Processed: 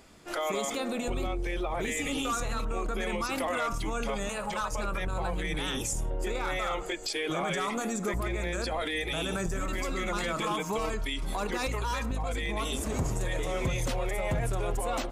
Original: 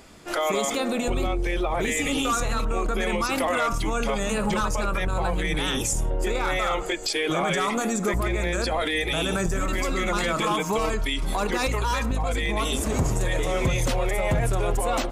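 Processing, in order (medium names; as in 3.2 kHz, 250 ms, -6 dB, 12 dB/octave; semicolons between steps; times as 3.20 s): 4.29–4.72 s: resonant low shelf 470 Hz -7.5 dB, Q 1.5; trim -6.5 dB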